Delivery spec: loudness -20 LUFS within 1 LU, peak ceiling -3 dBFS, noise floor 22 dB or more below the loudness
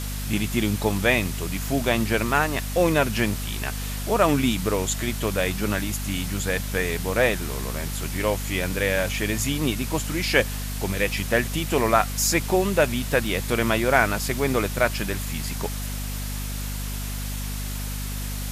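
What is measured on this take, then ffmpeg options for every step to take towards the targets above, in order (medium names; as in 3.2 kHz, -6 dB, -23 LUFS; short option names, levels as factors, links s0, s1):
hum 50 Hz; highest harmonic 250 Hz; hum level -28 dBFS; noise floor -30 dBFS; noise floor target -47 dBFS; loudness -24.5 LUFS; peak level -3.0 dBFS; loudness target -20.0 LUFS
-> -af "bandreject=f=50:t=h:w=4,bandreject=f=100:t=h:w=4,bandreject=f=150:t=h:w=4,bandreject=f=200:t=h:w=4,bandreject=f=250:t=h:w=4"
-af "afftdn=nr=17:nf=-30"
-af "volume=1.68,alimiter=limit=0.708:level=0:latency=1"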